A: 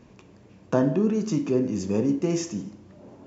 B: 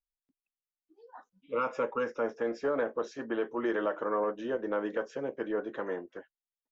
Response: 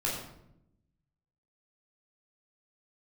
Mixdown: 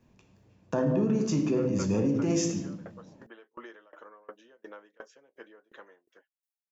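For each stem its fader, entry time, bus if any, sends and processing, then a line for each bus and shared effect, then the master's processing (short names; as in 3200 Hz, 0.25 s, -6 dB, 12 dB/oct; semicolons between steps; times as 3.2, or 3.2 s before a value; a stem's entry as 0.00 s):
-3.0 dB, 0.00 s, send -9.5 dB, de-hum 84.92 Hz, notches 5; three-band expander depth 40%
-5.0 dB, 0.00 s, no send, tilt +3.5 dB/oct; dB-ramp tremolo decaying 2.8 Hz, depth 28 dB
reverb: on, RT60 0.80 s, pre-delay 12 ms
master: limiter -18 dBFS, peak gain reduction 8 dB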